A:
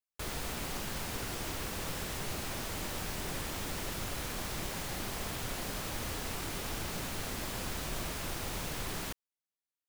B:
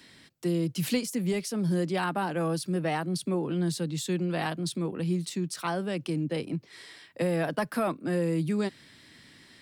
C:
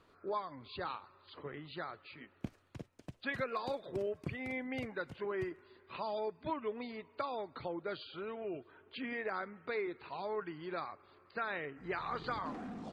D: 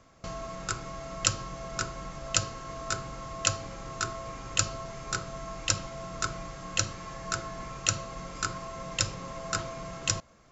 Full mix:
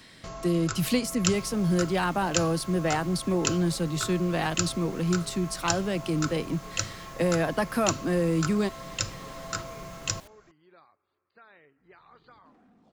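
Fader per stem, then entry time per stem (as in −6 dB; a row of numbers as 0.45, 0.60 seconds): −13.5, +2.5, −16.5, −2.0 decibels; 1.15, 0.00, 0.00, 0.00 seconds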